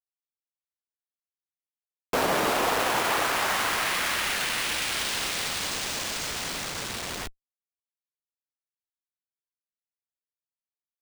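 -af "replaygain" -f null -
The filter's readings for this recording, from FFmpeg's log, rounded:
track_gain = +9.4 dB
track_peak = 0.170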